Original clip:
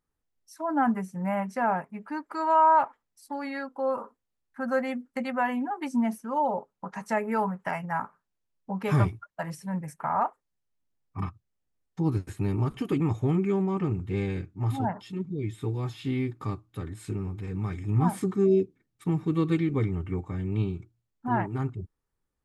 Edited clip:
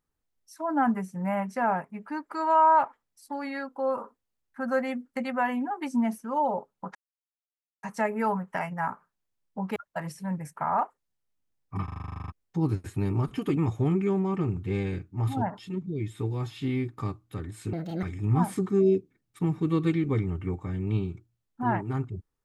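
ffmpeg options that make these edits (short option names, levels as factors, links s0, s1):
-filter_complex "[0:a]asplit=17[s0][s1][s2][s3][s4][s5][s6][s7][s8][s9][s10][s11][s12][s13][s14][s15][s16];[s0]atrim=end=6.95,asetpts=PTS-STARTPTS,afade=t=out:st=6.946:d=0.004:c=hsin,apad=pad_dur=0.88[s17];[s1]atrim=start=6.95:end=8.882,asetpts=PTS-STARTPTS,afade=t=in:d=0.004:c=hsin[s18];[s2]atrim=start=9.188:end=11.312[s19];[s3]atrim=start=11.268:end=11.312[s20];[s4]atrim=start=11.268:end=11.312[s21];[s5]atrim=start=11.268:end=11.312[s22];[s6]atrim=start=11.268:end=11.312[s23];[s7]atrim=start=11.268:end=11.312[s24];[s8]atrim=start=11.268:end=11.312[s25];[s9]atrim=start=11.268:end=11.312[s26];[s10]atrim=start=11.268:end=11.312[s27];[s11]atrim=start=11.268:end=11.312[s28];[s12]atrim=start=11.268:end=11.312[s29];[s13]atrim=start=11.268:end=11.312[s30];[s14]atrim=start=11.748:end=17.164[s31];[s15]atrim=start=17.16:end=17.68,asetpts=PTS-STARTPTS,asetrate=76734,aresample=44100,atrim=end_sample=13179,asetpts=PTS-STARTPTS[s32];[s16]atrim=start=17.676[s33];[s17][s18]concat=n=2:v=0:a=1[s34];[s34][s19]acrossfade=d=0.004:c1=hsin:c2=hsin[s35];[s35][s20]acrossfade=d=0.004:c1=hsin:c2=hsin[s36];[s36][s21]acrossfade=d=0.004:c1=hsin:c2=hsin[s37];[s37][s22]acrossfade=d=0.004:c1=hsin:c2=hsin[s38];[s38][s23]acrossfade=d=0.004:c1=hsin:c2=hsin[s39];[s39][s24]acrossfade=d=0.004:c1=hsin:c2=hsin[s40];[s40][s25]acrossfade=d=0.004:c1=hsin:c2=hsin[s41];[s41][s26]acrossfade=d=0.004:c1=hsin:c2=hsin[s42];[s42][s27]acrossfade=d=0.004:c1=hsin:c2=hsin[s43];[s43][s28]acrossfade=d=0.004:c1=hsin:c2=hsin[s44];[s44][s29]acrossfade=d=0.004:c1=hsin:c2=hsin[s45];[s45][s30]acrossfade=d=0.004:c1=hsin:c2=hsin[s46];[s46][s31]acrossfade=d=0.004:c1=hsin:c2=hsin[s47];[s47][s32]acrossfade=d=0.004:c1=hsin:c2=hsin[s48];[s48][s33]acrossfade=d=0.004:c1=hsin:c2=hsin"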